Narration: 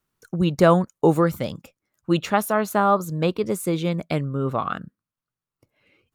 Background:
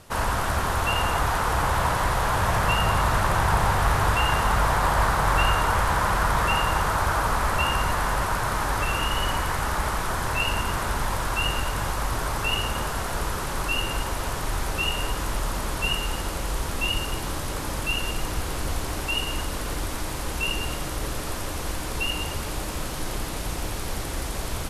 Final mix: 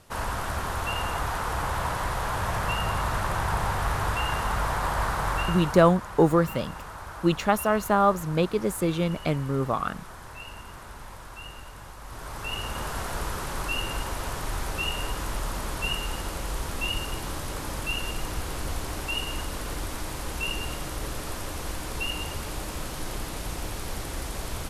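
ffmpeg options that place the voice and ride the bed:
ffmpeg -i stem1.wav -i stem2.wav -filter_complex "[0:a]adelay=5150,volume=-2dB[link_01];[1:a]volume=7.5dB,afade=type=out:start_time=5.27:duration=0.69:silence=0.281838,afade=type=in:start_time=12.02:duration=0.95:silence=0.223872[link_02];[link_01][link_02]amix=inputs=2:normalize=0" out.wav

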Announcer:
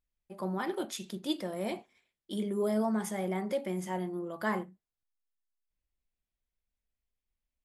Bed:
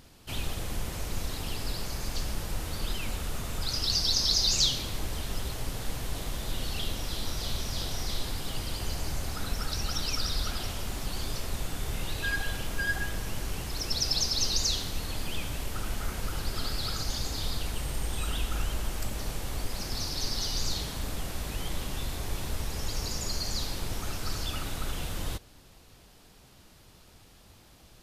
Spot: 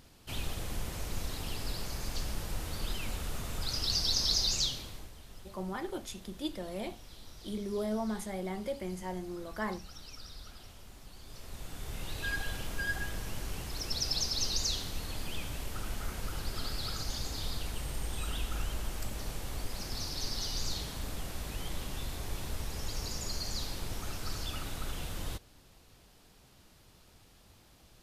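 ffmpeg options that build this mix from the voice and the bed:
ffmpeg -i stem1.wav -i stem2.wav -filter_complex "[0:a]adelay=5150,volume=-4dB[link_01];[1:a]volume=9.5dB,afade=type=out:start_time=4.35:duration=0.78:silence=0.199526,afade=type=in:start_time=11.23:duration=1.07:silence=0.223872[link_02];[link_01][link_02]amix=inputs=2:normalize=0" out.wav

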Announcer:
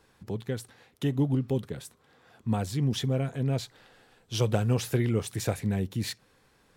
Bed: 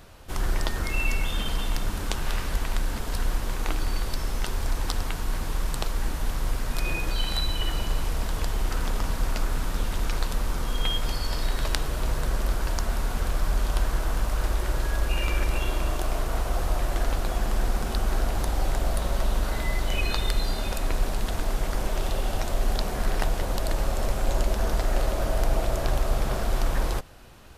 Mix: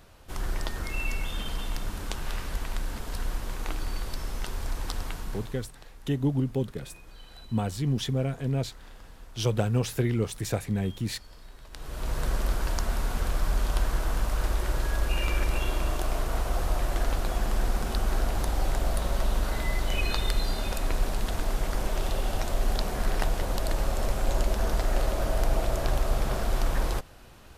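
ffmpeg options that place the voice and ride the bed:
ffmpeg -i stem1.wav -i stem2.wav -filter_complex "[0:a]adelay=5050,volume=0dB[link_01];[1:a]volume=15.5dB,afade=type=out:start_time=5.11:duration=0.59:silence=0.141254,afade=type=in:start_time=11.71:duration=0.54:silence=0.0944061[link_02];[link_01][link_02]amix=inputs=2:normalize=0" out.wav

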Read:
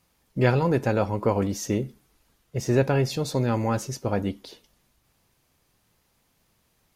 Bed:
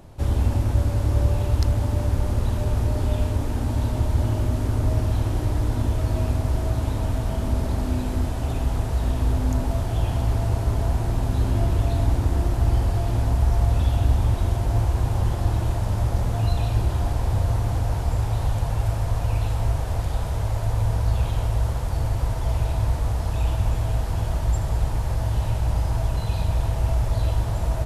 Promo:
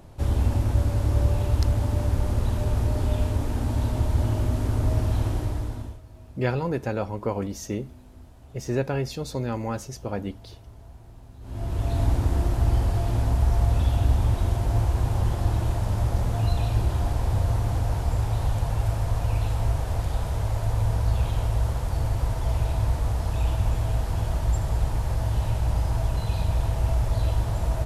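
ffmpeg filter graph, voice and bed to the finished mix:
ffmpeg -i stem1.wav -i stem2.wav -filter_complex "[0:a]adelay=6000,volume=-4.5dB[link_01];[1:a]volume=20.5dB,afade=type=out:start_time=5.26:duration=0.75:silence=0.0794328,afade=type=in:start_time=11.41:duration=0.62:silence=0.0794328[link_02];[link_01][link_02]amix=inputs=2:normalize=0" out.wav

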